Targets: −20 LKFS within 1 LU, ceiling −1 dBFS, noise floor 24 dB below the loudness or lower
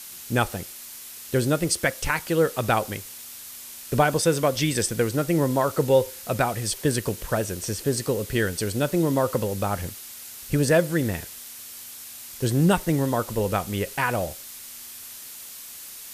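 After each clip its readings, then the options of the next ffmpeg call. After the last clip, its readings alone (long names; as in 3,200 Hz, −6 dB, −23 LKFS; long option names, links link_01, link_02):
background noise floor −41 dBFS; target noise floor −49 dBFS; integrated loudness −24.5 LKFS; sample peak −6.5 dBFS; target loudness −20.0 LKFS
→ -af "afftdn=noise_reduction=8:noise_floor=-41"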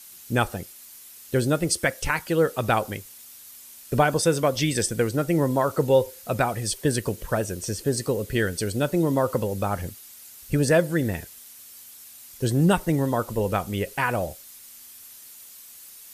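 background noise floor −46 dBFS; target noise floor −49 dBFS
→ -af "afftdn=noise_reduction=6:noise_floor=-46"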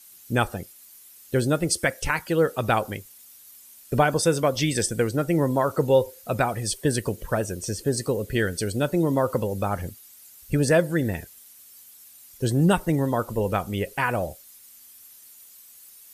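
background noise floor −50 dBFS; integrated loudness −24.5 LKFS; sample peak −7.0 dBFS; target loudness −20.0 LKFS
→ -af "volume=4.5dB"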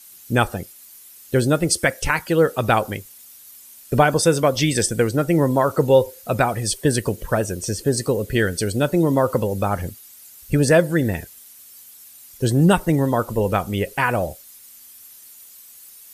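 integrated loudness −20.0 LKFS; sample peak −2.5 dBFS; background noise floor −45 dBFS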